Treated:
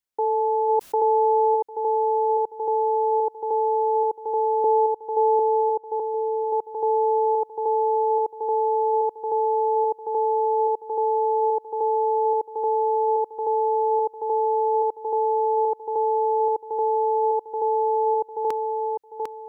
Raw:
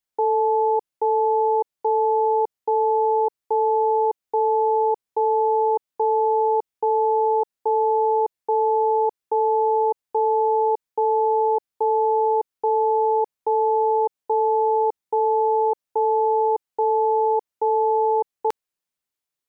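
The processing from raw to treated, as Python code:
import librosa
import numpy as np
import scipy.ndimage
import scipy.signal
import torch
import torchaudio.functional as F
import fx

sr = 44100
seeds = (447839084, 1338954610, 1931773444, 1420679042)

y = fx.steep_lowpass(x, sr, hz=970.0, slope=48, at=(4.64, 5.89))
y = fx.echo_feedback(y, sr, ms=750, feedback_pct=25, wet_db=-4)
y = fx.env_flatten(y, sr, amount_pct=70, at=(0.68, 1.55), fade=0.02)
y = y * 10.0 ** (-2.5 / 20.0)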